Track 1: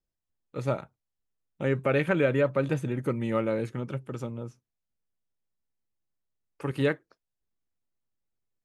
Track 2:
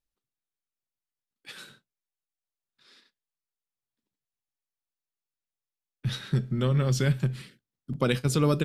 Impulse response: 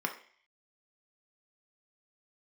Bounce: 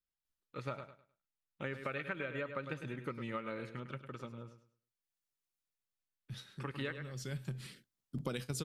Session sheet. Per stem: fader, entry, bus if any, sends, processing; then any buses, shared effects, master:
-13.0 dB, 0.00 s, no send, echo send -11 dB, high-order bell 2.3 kHz +8.5 dB 2.5 oct; transient shaper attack +3 dB, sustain -2 dB
-3.5 dB, 0.25 s, no send, no echo send, tone controls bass -1 dB, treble +5 dB; auto duck -17 dB, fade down 1.00 s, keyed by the first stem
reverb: none
echo: feedback delay 103 ms, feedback 26%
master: compression 12:1, threshold -35 dBFS, peak gain reduction 13 dB

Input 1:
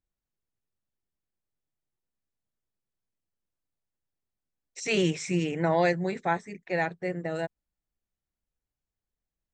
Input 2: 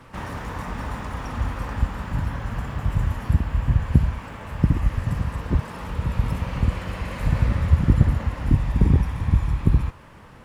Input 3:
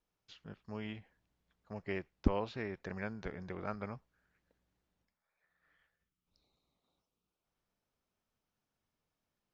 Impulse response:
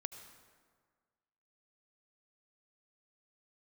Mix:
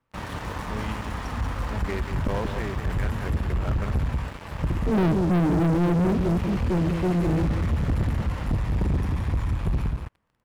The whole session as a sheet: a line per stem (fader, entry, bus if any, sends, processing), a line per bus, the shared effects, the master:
+0.5 dB, 0.00 s, no send, echo send -10 dB, inverse Chebyshev low-pass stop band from 2 kHz, stop band 80 dB
-19.5 dB, 0.00 s, no send, echo send -8 dB, none
-10.5 dB, 0.00 s, no send, echo send -9.5 dB, steep low-pass 3.5 kHz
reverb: none
echo: delay 186 ms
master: waveshaping leveller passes 5

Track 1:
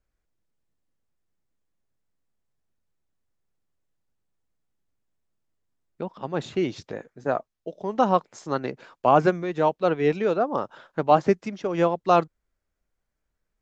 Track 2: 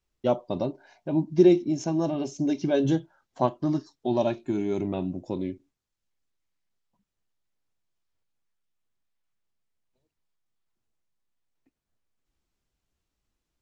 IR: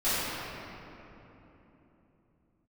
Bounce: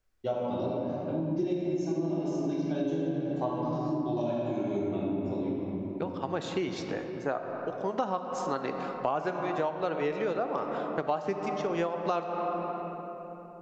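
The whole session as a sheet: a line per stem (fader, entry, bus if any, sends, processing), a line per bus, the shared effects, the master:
+1.5 dB, 0.00 s, send -19.5 dB, bass shelf 350 Hz -6.5 dB
-10.5 dB, 0.00 s, send -4.5 dB, none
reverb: on, RT60 3.4 s, pre-delay 3 ms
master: compression 6:1, threshold -27 dBFS, peak gain reduction 15.5 dB

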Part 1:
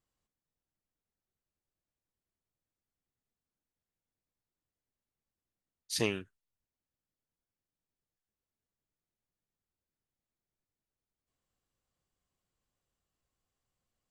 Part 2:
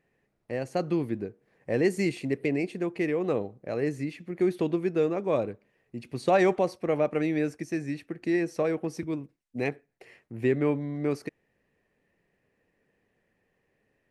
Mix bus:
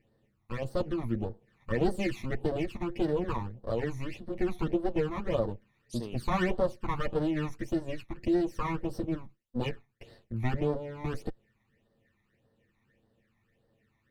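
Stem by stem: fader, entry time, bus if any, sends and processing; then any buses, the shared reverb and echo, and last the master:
-9.0 dB, 0.00 s, no send, none
+2.5 dB, 0.00 s, no send, comb filter that takes the minimum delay 8.9 ms; tone controls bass +5 dB, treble -4 dB; small resonant body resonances 530/1800/2900 Hz, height 6 dB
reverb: none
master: phase shifter stages 12, 1.7 Hz, lowest notch 490–2400 Hz; compression 1.5:1, threshold -30 dBFS, peak gain reduction 5 dB

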